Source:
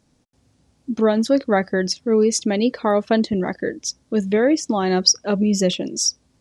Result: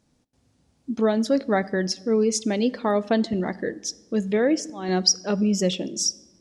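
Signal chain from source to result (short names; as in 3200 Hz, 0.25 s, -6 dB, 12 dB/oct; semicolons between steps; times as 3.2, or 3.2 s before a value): 4.38–4.89 auto swell 0.29 s; on a send: reverb RT60 1.2 s, pre-delay 4 ms, DRR 18 dB; on the sum: gain -4 dB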